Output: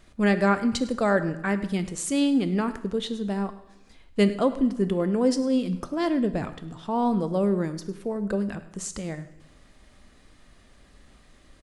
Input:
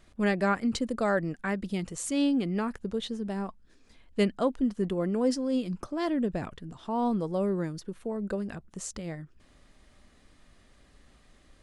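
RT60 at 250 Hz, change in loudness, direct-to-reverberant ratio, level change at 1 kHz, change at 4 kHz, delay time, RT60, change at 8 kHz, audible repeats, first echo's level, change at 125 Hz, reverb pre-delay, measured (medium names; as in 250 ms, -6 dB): 1.0 s, +4.5 dB, 11.0 dB, +4.0 dB, +4.5 dB, 103 ms, 0.90 s, +4.5 dB, 1, -18.0 dB, +5.0 dB, 7 ms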